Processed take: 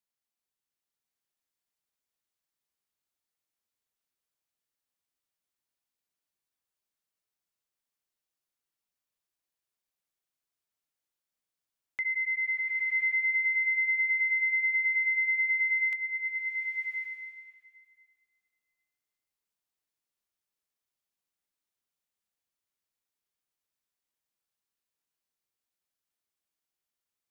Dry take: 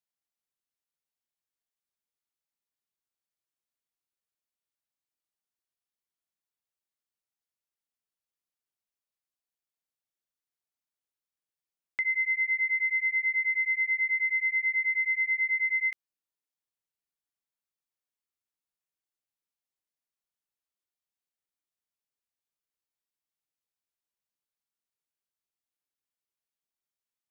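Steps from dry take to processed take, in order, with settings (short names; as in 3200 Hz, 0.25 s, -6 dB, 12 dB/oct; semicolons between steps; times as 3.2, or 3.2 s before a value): limiter -25.5 dBFS, peak gain reduction 4 dB; bloom reverb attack 1.06 s, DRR 0.5 dB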